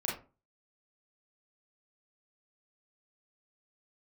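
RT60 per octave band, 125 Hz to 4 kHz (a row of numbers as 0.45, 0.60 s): 0.45, 0.40, 0.35, 0.30, 0.25, 0.20 s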